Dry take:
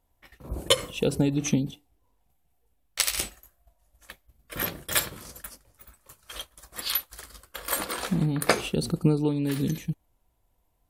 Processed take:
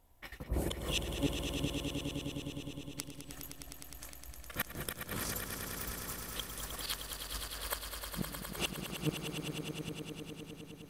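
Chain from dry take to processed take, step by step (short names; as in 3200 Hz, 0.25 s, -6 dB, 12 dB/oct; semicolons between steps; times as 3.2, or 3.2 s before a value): auto swell 0.209 s; flipped gate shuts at -26 dBFS, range -30 dB; swelling echo 0.103 s, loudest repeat 5, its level -8.5 dB; gain +5 dB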